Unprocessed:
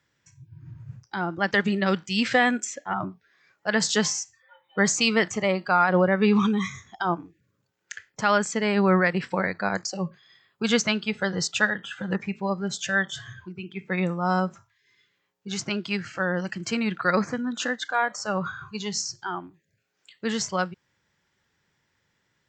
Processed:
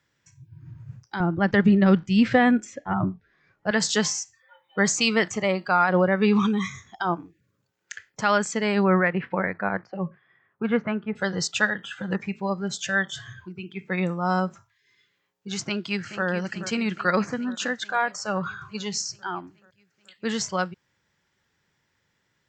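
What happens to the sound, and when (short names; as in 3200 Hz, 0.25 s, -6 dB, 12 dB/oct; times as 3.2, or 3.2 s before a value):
1.2–3.71 RIAA curve playback
8.83–11.15 LPF 2800 Hz -> 1700 Hz 24 dB/oct
15.6–16.26 echo throw 0.43 s, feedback 70%, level -11.5 dB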